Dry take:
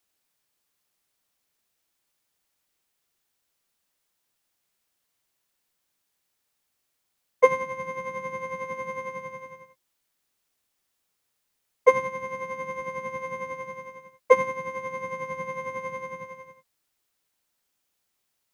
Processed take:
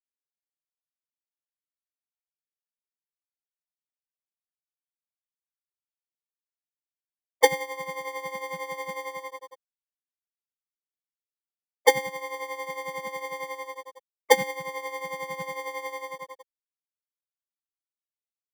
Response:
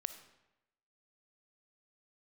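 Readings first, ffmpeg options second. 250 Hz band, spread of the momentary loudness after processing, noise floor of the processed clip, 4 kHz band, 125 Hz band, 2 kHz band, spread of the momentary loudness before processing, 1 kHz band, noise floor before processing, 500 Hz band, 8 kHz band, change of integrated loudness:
0.0 dB, 16 LU, under -85 dBFS, n/a, -3.5 dB, +1.5 dB, 18 LU, -1.0 dB, -78 dBFS, -2.5 dB, +11.5 dB, -1.0 dB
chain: -filter_complex "[0:a]afftfilt=real='re*gte(hypot(re,im),0.0631)':imag='im*gte(hypot(re,im),0.0631)':win_size=1024:overlap=0.75,acrossover=split=140|550|2000[a][b][c][d];[b]acrusher=samples=33:mix=1:aa=0.000001[e];[c]acompressor=threshold=-41dB:ratio=6[f];[a][e][f][d]amix=inputs=4:normalize=0,volume=4dB"

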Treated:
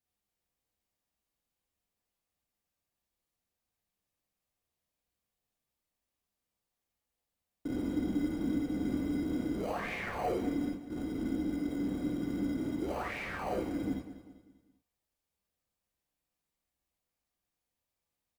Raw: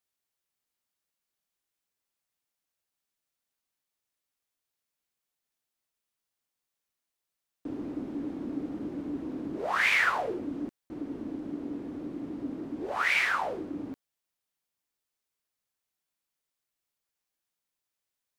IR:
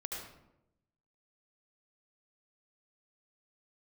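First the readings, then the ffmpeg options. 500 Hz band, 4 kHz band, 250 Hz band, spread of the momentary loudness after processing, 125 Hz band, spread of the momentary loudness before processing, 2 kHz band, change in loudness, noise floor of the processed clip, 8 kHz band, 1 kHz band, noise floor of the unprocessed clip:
-0.5 dB, -11.5 dB, +2.5 dB, 5 LU, +6.0 dB, 15 LU, -14.0 dB, -4.0 dB, under -85 dBFS, n/a, -7.0 dB, under -85 dBFS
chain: -filter_complex "[0:a]lowshelf=f=350:g=9,acrossover=split=590[a][b];[b]acompressor=threshold=-37dB:ratio=6[c];[a][c]amix=inputs=2:normalize=0,alimiter=limit=-23.5dB:level=0:latency=1:release=216,asplit=2[d][e];[e]acrusher=samples=25:mix=1:aa=0.000001,volume=-10dB[f];[d][f]amix=inputs=2:normalize=0,aecho=1:1:197|394|591|788:0.211|0.093|0.0409|0.018[g];[1:a]atrim=start_sample=2205,atrim=end_sample=6174,asetrate=66150,aresample=44100[h];[g][h]afir=irnorm=-1:irlink=0,volume=1.5dB"

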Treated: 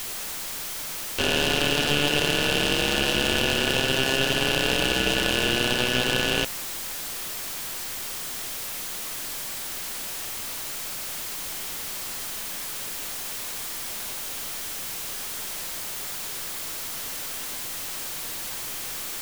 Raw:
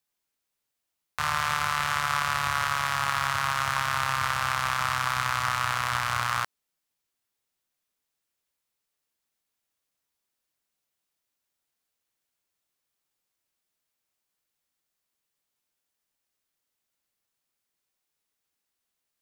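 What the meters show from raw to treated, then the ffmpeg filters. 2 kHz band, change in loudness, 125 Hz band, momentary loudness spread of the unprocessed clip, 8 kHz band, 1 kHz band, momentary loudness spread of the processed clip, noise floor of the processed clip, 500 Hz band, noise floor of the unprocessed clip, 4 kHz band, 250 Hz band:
+3.0 dB, +0.5 dB, +4.5 dB, 2 LU, +10.5 dB, -5.5 dB, 9 LU, -33 dBFS, +17.0 dB, -83 dBFS, +11.5 dB, +18.5 dB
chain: -af "aeval=exprs='val(0)+0.5*0.0422*sgn(val(0))':c=same,aeval=exprs='val(0)*sin(2*PI*1600*n/s)':c=same,aeval=exprs='0.355*(cos(1*acos(clip(val(0)/0.355,-1,1)))-cos(1*PI/2))+0.0282*(cos(8*acos(clip(val(0)/0.355,-1,1)))-cos(8*PI/2))':c=same,volume=4dB"

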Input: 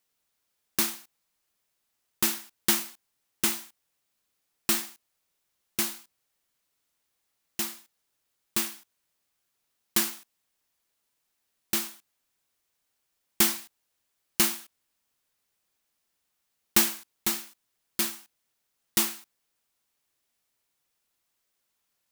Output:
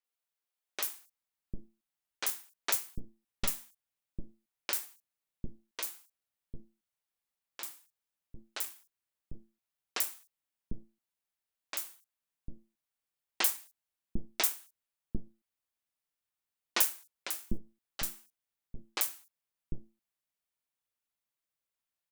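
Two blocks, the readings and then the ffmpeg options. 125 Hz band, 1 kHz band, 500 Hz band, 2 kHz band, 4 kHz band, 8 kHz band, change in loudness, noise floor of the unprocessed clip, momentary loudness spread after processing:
-0.5 dB, -5.5 dB, -7.5 dB, -6.5 dB, -8.0 dB, -8.0 dB, -7.5 dB, -79 dBFS, 23 LU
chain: -filter_complex "[0:a]aeval=exprs='0.631*(cos(1*acos(clip(val(0)/0.631,-1,1)))-cos(1*PI/2))+0.158*(cos(6*acos(clip(val(0)/0.631,-1,1)))-cos(6*PI/2))+0.126*(cos(7*acos(clip(val(0)/0.631,-1,1)))-cos(7*PI/2))':c=same,acrossover=split=340|5700[a][b][c];[c]adelay=40[d];[a]adelay=750[e];[e][b][d]amix=inputs=3:normalize=0,volume=-4.5dB"

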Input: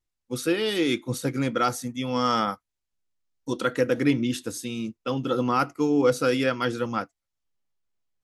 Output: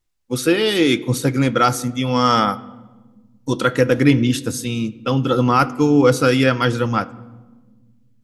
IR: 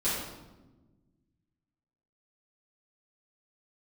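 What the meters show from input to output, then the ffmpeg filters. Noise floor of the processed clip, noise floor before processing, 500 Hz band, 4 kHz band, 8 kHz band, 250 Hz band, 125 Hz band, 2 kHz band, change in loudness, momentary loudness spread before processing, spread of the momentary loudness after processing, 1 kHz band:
-55 dBFS, -84 dBFS, +7.0 dB, +8.0 dB, +8.0 dB, +8.0 dB, +12.5 dB, +8.5 dB, +8.0 dB, 10 LU, 9 LU, +8.0 dB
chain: -filter_complex "[0:a]asplit=2[a][b];[1:a]atrim=start_sample=2205,asetrate=36162,aresample=44100,lowpass=5.2k[c];[b][c]afir=irnorm=-1:irlink=0,volume=-26.5dB[d];[a][d]amix=inputs=2:normalize=0,asubboost=boost=2:cutoff=180,volume=8dB"

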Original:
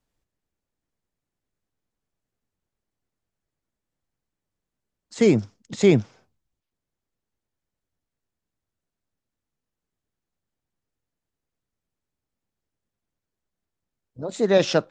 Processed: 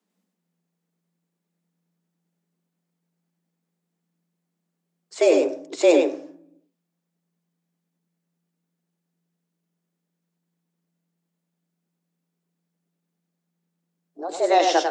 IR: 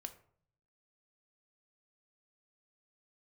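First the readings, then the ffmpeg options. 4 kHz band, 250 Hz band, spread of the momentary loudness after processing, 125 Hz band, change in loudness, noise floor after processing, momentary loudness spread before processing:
+1.5 dB, -3.5 dB, 17 LU, under -30 dB, +0.5 dB, -80 dBFS, 16 LU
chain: -filter_complex "[0:a]asplit=2[a][b];[1:a]atrim=start_sample=2205,highshelf=f=7.8k:g=7.5,adelay=98[c];[b][c]afir=irnorm=-1:irlink=0,volume=-0.5dB[d];[a][d]amix=inputs=2:normalize=0,afreqshift=170,bandreject=f=125.5:t=h:w=4,bandreject=f=251:t=h:w=4,bandreject=f=376.5:t=h:w=4,bandreject=f=502:t=h:w=4,bandreject=f=627.5:t=h:w=4,bandreject=f=753:t=h:w=4,bandreject=f=878.5:t=h:w=4,bandreject=f=1.004k:t=h:w=4,bandreject=f=1.1295k:t=h:w=4,bandreject=f=1.255k:t=h:w=4,bandreject=f=1.3805k:t=h:w=4,bandreject=f=1.506k:t=h:w=4,bandreject=f=1.6315k:t=h:w=4,bandreject=f=1.757k:t=h:w=4,bandreject=f=1.8825k:t=h:w=4,bandreject=f=2.008k:t=h:w=4"

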